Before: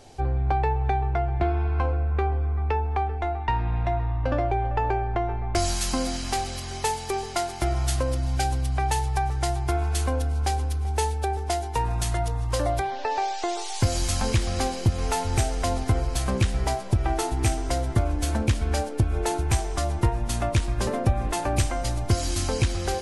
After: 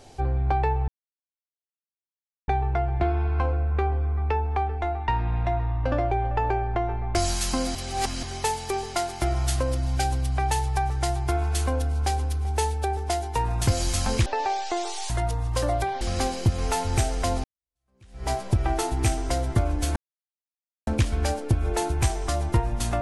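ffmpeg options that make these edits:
-filter_complex "[0:a]asplit=10[s0][s1][s2][s3][s4][s5][s6][s7][s8][s9];[s0]atrim=end=0.88,asetpts=PTS-STARTPTS,afade=t=out:st=0.876:d=0.004:c=hsin,apad=pad_dur=1.6[s10];[s1]atrim=start=0.88:end=6.152,asetpts=PTS-STARTPTS,afade=t=in:d=0.004:c=hsin[s11];[s2]atrim=start=6.148:end=6.632,asetpts=PTS-STARTPTS,areverse[s12];[s3]atrim=start=6.628:end=12.072[s13];[s4]atrim=start=13.818:end=14.412[s14];[s5]atrim=start=12.978:end=13.822[s15];[s6]atrim=start=12.068:end=12.982[s16];[s7]atrim=start=14.408:end=15.84,asetpts=PTS-STARTPTS,afade=t=out:st=1.428:d=0.004:c=hsin[s17];[s8]atrim=start=15.84:end=18.36,asetpts=PTS-STARTPTS,afade=t=in:d=0.86:c=exp,afade=t=out:st=2.516:d=0.004:c=hsin,apad=pad_dur=0.91[s18];[s9]atrim=start=18.36,asetpts=PTS-STARTPTS,afade=t=in:d=0.004:c=hsin[s19];[s10][s11]concat=n=2:v=0:a=1[s20];[s20][s12]acrossfade=d=0.004:c1=hsin:c2=hsin[s21];[s21][s13]acrossfade=d=0.004:c1=hsin:c2=hsin[s22];[s22][s14]acrossfade=d=0.004:c1=hsin:c2=hsin[s23];[s23][s15]acrossfade=d=0.004:c1=hsin:c2=hsin[s24];[s24][s16]acrossfade=d=0.004:c1=hsin:c2=hsin[s25];[s17][s18][s19]concat=n=3:v=0:a=1[s26];[s25][s26]acrossfade=d=0.004:c1=hsin:c2=hsin"

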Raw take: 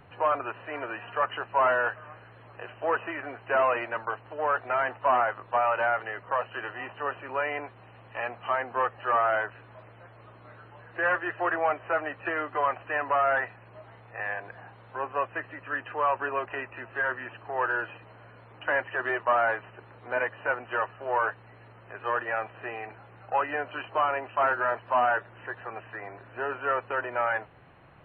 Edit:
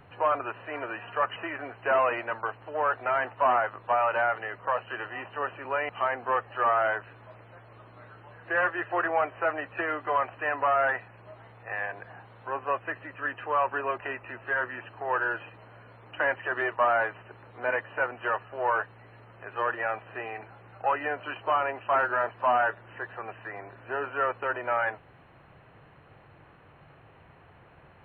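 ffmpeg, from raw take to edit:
-filter_complex "[0:a]asplit=3[s0][s1][s2];[s0]atrim=end=1.362[s3];[s1]atrim=start=2.998:end=7.532[s4];[s2]atrim=start=8.368[s5];[s3][s4]acrossfade=d=0.004:c1=hsin:c2=hsin[s6];[s6][s5]acrossfade=d=0.004:c1=hsin:c2=hsin"

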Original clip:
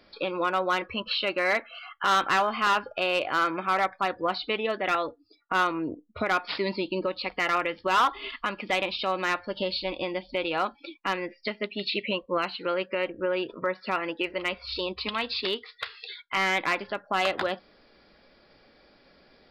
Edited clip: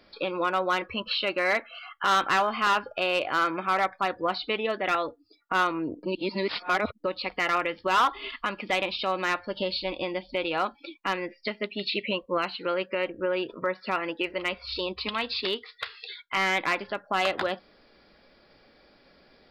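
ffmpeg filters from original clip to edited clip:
-filter_complex "[0:a]asplit=3[s0][s1][s2];[s0]atrim=end=6.032[s3];[s1]atrim=start=6.028:end=7.042,asetpts=PTS-STARTPTS,areverse[s4];[s2]atrim=start=7.038[s5];[s3][s4]acrossfade=d=0.004:c1=hsin:c2=hsin[s6];[s6][s5]acrossfade=d=0.004:c1=hsin:c2=hsin"

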